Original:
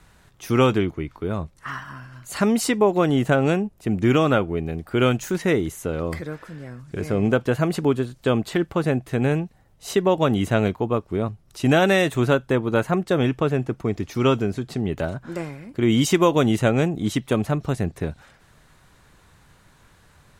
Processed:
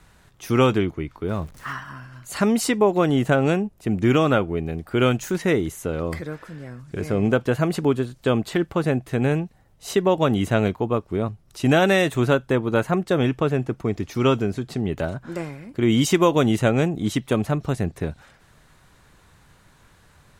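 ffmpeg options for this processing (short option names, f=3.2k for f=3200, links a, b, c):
-filter_complex "[0:a]asettb=1/sr,asplit=3[a][b][c];[a]atrim=end=1.284[d];[b]atrim=start=1.28:end=1.73,asetpts=PTS-STARTPTS,afade=t=in:d=0.004:c=qsin,afade=t=out:st=0.446:d=0.004:c=qsin,aeval=exprs='val(0)+0.5*0.00794*sgn(val(0))':c=same[e];[c]atrim=start=1.726[f];[d][e]acrossfade=d=0.004:c1=hsin:c2=qsin[g];[g][f]acrossfade=d=0.004:c1=qsin:c2=hsin"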